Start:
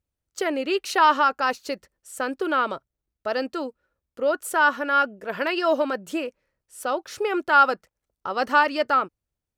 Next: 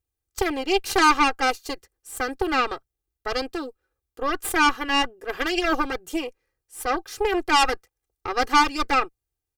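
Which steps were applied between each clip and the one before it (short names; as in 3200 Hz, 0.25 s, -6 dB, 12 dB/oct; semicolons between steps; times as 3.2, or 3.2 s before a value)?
high shelf 7700 Hz +8.5 dB; added harmonics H 6 -11 dB, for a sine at -5.5 dBFS; comb 2.5 ms, depth 90%; gain -4.5 dB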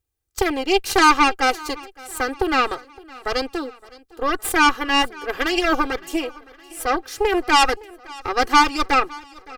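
feedback echo 0.564 s, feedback 54%, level -22 dB; gain +3.5 dB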